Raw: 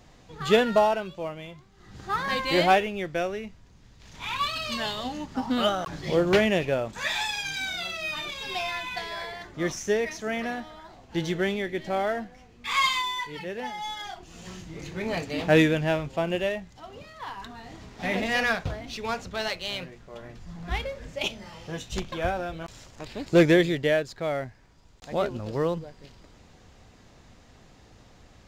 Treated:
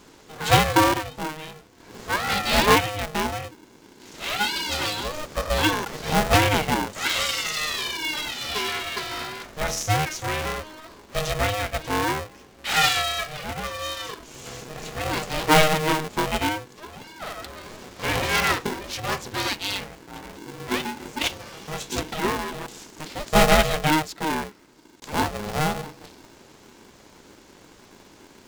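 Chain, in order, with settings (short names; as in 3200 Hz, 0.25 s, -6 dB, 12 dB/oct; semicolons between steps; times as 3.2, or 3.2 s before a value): high shelf 5900 Hz +9.5 dB; de-hum 174.3 Hz, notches 3; polarity switched at an audio rate 310 Hz; gain +2.5 dB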